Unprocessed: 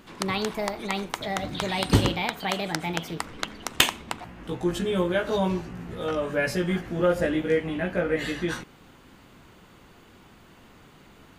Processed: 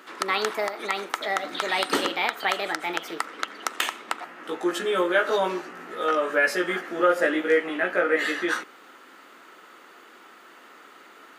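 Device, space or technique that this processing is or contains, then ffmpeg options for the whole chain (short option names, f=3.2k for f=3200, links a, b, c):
laptop speaker: -af "highpass=f=310:w=0.5412,highpass=f=310:w=1.3066,equalizer=f=1.3k:t=o:w=0.24:g=10,equalizer=f=1.8k:t=o:w=0.46:g=6,alimiter=limit=-12dB:level=0:latency=1:release=161,volume=2.5dB"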